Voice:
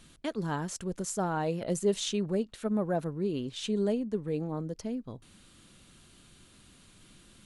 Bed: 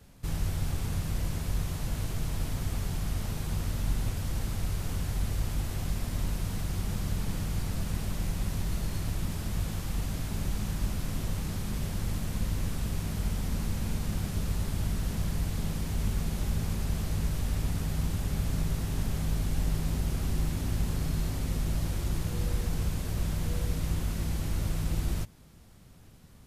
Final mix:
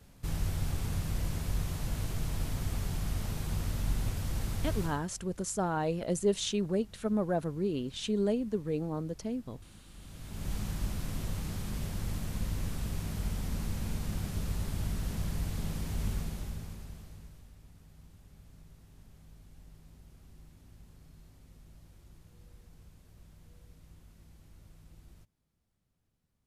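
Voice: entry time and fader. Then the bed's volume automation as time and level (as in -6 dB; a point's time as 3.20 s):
4.40 s, -0.5 dB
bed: 4.83 s -2 dB
5.11 s -23 dB
9.88 s -23 dB
10.52 s -3.5 dB
16.13 s -3.5 dB
17.56 s -25.5 dB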